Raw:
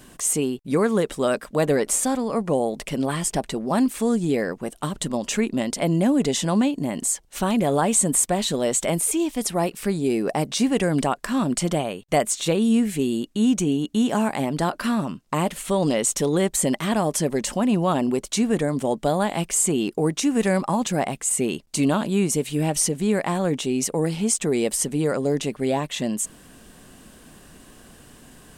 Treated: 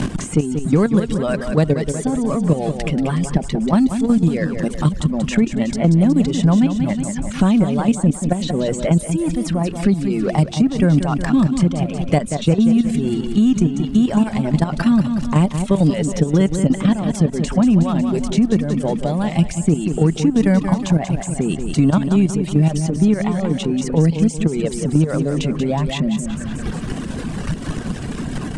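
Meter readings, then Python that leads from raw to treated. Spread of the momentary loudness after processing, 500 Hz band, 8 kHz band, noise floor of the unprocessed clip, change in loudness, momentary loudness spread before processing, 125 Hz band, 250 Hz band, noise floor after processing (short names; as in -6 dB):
6 LU, +1.0 dB, -8.0 dB, -49 dBFS, +4.5 dB, 5 LU, +11.5 dB, +7.0 dB, -28 dBFS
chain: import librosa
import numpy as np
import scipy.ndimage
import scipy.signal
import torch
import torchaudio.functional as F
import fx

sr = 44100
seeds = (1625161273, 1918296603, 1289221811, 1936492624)

p1 = x + 0.5 * 10.0 ** (-31.0 / 20.0) * np.sign(x)
p2 = fx.bass_treble(p1, sr, bass_db=15, treble_db=2)
p3 = fx.dereverb_blind(p2, sr, rt60_s=1.9)
p4 = scipy.signal.sosfilt(scipy.signal.butter(6, 9900.0, 'lowpass', fs=sr, output='sos'), p3)
p5 = 10.0 ** (-13.5 / 20.0) * np.tanh(p4 / 10.0 ** (-13.5 / 20.0))
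p6 = p4 + (p5 * librosa.db_to_amplitude(-8.0))
p7 = fx.level_steps(p6, sr, step_db=12)
p8 = fx.high_shelf(p7, sr, hz=5700.0, db=-10.5)
p9 = fx.echo_feedback(p8, sr, ms=183, feedback_pct=47, wet_db=-9.5)
y = fx.band_squash(p9, sr, depth_pct=70)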